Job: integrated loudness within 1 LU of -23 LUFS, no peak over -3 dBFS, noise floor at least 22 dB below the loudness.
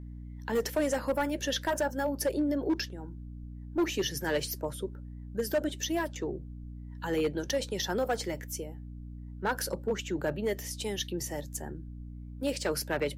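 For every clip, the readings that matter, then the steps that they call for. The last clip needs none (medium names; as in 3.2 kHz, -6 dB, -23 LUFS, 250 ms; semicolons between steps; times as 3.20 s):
clipped samples 1.0%; clipping level -22.5 dBFS; hum 60 Hz; highest harmonic 300 Hz; hum level -40 dBFS; loudness -32.5 LUFS; peak level -22.5 dBFS; loudness target -23.0 LUFS
-> clip repair -22.5 dBFS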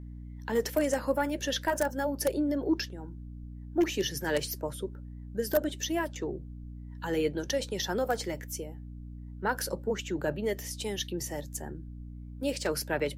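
clipped samples 0.0%; hum 60 Hz; highest harmonic 240 Hz; hum level -40 dBFS
-> de-hum 60 Hz, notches 4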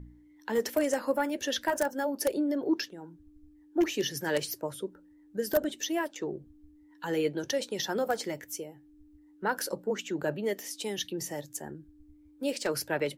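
hum not found; loudness -32.0 LUFS; peak level -13.0 dBFS; loudness target -23.0 LUFS
-> trim +9 dB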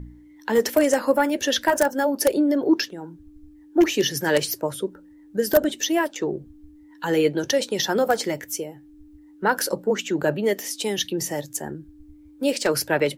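loudness -23.0 LUFS; peak level -4.0 dBFS; noise floor -49 dBFS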